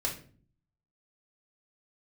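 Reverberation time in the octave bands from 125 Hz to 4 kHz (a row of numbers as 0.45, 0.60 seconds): 0.85, 0.75, 0.50, 0.40, 0.35, 0.35 seconds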